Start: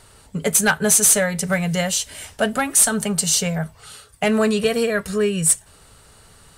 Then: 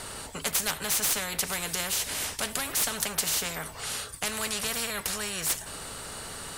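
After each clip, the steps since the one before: spectrum-flattening compressor 4:1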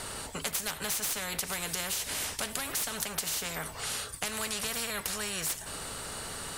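compression 4:1, threshold -30 dBFS, peak gain reduction 7 dB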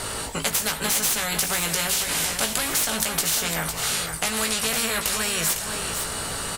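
doubling 18 ms -5.5 dB; on a send: delay 504 ms -7.5 dB; on the sum: trim +8 dB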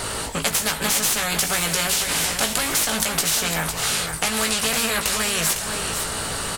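loudspeaker Doppler distortion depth 0.2 ms; trim +3 dB

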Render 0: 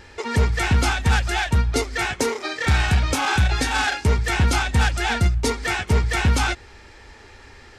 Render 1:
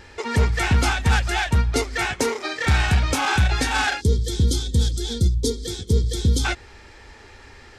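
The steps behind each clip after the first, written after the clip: time-frequency box 4.01–6.45 s, 520–3100 Hz -23 dB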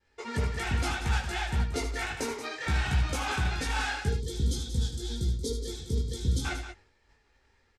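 expander -35 dBFS; chorus voices 6, 0.63 Hz, delay 18 ms, depth 4.9 ms; loudspeakers at several distances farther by 26 m -9 dB, 62 m -10 dB; trim -7.5 dB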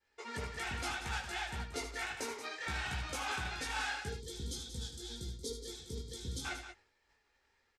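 bass shelf 300 Hz -11 dB; trim -5 dB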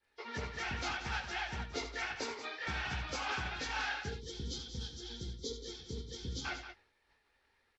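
knee-point frequency compression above 2.9 kHz 1.5:1; harmonic-percussive split percussive +4 dB; trim -1 dB

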